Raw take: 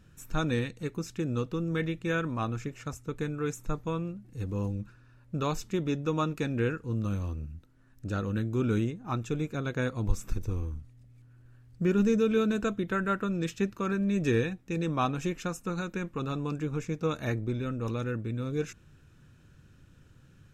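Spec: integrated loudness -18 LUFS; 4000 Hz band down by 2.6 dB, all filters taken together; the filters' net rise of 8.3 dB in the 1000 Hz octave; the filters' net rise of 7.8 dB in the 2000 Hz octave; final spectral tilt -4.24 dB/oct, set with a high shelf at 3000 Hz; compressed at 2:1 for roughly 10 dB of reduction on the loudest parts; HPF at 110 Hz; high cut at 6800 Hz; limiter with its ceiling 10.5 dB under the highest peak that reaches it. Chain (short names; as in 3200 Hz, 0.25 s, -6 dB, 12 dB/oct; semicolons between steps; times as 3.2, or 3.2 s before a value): HPF 110 Hz; LPF 6800 Hz; bell 1000 Hz +8 dB; bell 2000 Hz +8 dB; high shelf 3000 Hz +3.5 dB; bell 4000 Hz -8.5 dB; compressor 2:1, threshold -36 dBFS; gain +22.5 dB; limiter -7 dBFS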